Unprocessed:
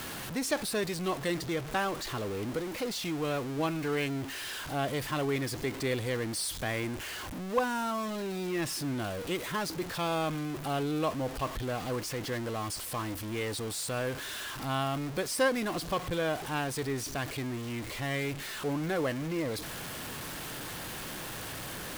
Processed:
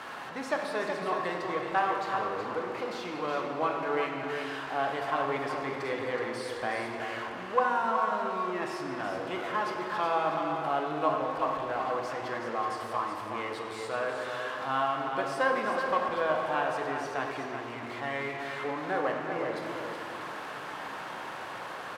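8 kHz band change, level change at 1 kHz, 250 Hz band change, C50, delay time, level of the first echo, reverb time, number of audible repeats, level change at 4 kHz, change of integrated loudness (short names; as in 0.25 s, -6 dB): -13.5 dB, +7.0 dB, -4.0 dB, 1.5 dB, 0.372 s, -7.0 dB, 2.6 s, 1, -5.0 dB, +1.5 dB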